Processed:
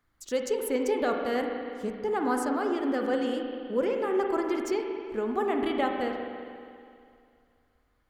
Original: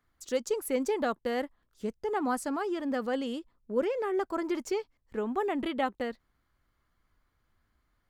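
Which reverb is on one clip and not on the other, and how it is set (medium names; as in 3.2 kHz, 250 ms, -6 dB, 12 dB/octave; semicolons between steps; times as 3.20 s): spring tank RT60 2.4 s, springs 40/50 ms, chirp 40 ms, DRR 2.5 dB; trim +1 dB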